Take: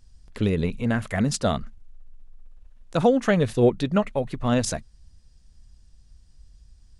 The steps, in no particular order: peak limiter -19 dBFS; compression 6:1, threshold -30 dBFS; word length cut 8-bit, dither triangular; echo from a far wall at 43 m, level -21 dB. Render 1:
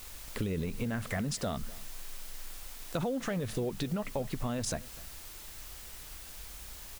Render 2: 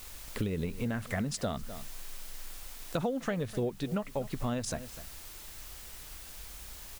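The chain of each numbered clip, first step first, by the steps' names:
peak limiter > word length cut > compression > echo from a far wall; word length cut > echo from a far wall > compression > peak limiter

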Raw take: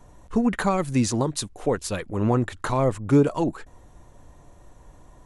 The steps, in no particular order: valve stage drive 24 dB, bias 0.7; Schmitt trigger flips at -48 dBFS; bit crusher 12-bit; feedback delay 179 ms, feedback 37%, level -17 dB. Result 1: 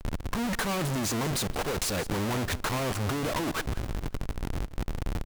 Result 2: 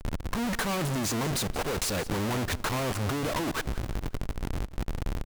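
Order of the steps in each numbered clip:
Schmitt trigger > feedback delay > valve stage > bit crusher; bit crusher > Schmitt trigger > valve stage > feedback delay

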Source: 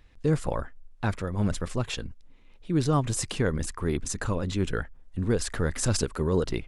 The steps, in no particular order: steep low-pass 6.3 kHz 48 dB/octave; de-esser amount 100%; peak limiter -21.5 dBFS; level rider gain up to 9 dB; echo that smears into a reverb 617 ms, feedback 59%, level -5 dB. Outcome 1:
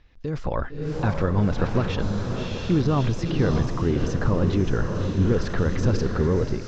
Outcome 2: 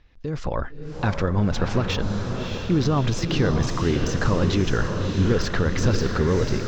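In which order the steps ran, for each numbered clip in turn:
peak limiter > echo that smears into a reverb > level rider > de-esser > steep low-pass; steep low-pass > de-esser > peak limiter > level rider > echo that smears into a reverb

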